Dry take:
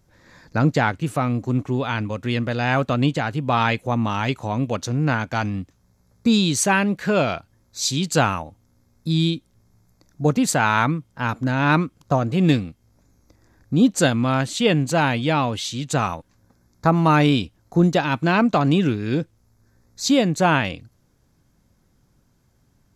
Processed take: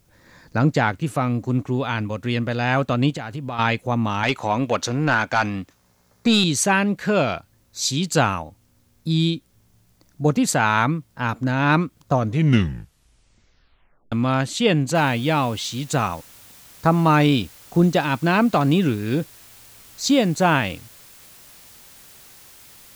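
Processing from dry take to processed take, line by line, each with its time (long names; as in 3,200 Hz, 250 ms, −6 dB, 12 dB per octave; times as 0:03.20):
0:03.10–0:03.59: downward compressor 5 to 1, threshold −26 dBFS
0:04.23–0:06.44: mid-hump overdrive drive 14 dB, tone 4,500 Hz, clips at −6 dBFS
0:12.13: tape stop 1.99 s
0:14.95: noise floor change −68 dB −47 dB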